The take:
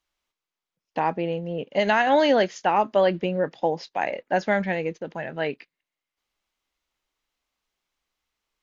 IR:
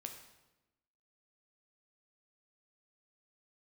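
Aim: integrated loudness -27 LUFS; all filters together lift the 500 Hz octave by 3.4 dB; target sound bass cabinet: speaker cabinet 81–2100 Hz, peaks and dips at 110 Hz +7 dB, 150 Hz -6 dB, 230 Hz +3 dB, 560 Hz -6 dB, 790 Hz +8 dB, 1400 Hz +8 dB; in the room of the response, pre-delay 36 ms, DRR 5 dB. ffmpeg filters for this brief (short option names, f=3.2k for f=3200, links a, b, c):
-filter_complex "[0:a]equalizer=f=500:t=o:g=7,asplit=2[a][b];[1:a]atrim=start_sample=2205,adelay=36[c];[b][c]afir=irnorm=-1:irlink=0,volume=-1.5dB[d];[a][d]amix=inputs=2:normalize=0,highpass=f=81:w=0.5412,highpass=f=81:w=1.3066,equalizer=f=110:t=q:w=4:g=7,equalizer=f=150:t=q:w=4:g=-6,equalizer=f=230:t=q:w=4:g=3,equalizer=f=560:t=q:w=4:g=-6,equalizer=f=790:t=q:w=4:g=8,equalizer=f=1.4k:t=q:w=4:g=8,lowpass=f=2.1k:w=0.5412,lowpass=f=2.1k:w=1.3066,volume=-9dB"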